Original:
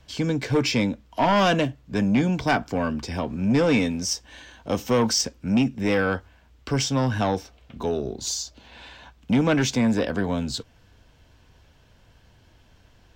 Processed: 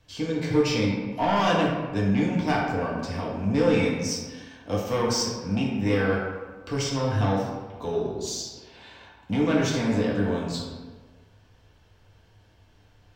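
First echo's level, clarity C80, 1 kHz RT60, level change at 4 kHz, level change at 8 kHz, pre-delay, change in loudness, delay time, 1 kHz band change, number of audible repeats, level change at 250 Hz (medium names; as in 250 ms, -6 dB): no echo, 3.5 dB, 1.4 s, -3.5 dB, -4.5 dB, 4 ms, -2.0 dB, no echo, -1.5 dB, no echo, -2.0 dB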